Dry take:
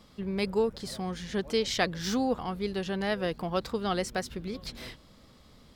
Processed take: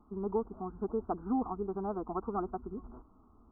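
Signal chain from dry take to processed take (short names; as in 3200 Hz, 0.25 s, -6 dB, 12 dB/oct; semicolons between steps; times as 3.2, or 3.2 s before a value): steep low-pass 1400 Hz 96 dB/oct; fixed phaser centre 540 Hz, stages 6; time stretch by phase-locked vocoder 0.61×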